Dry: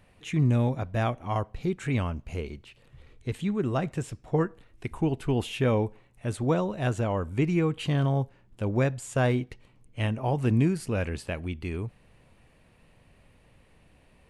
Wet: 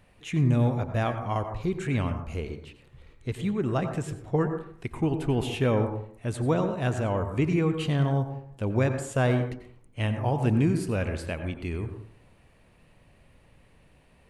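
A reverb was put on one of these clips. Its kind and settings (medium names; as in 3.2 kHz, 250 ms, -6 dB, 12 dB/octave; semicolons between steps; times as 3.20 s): plate-style reverb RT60 0.59 s, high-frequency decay 0.25×, pre-delay 80 ms, DRR 7.5 dB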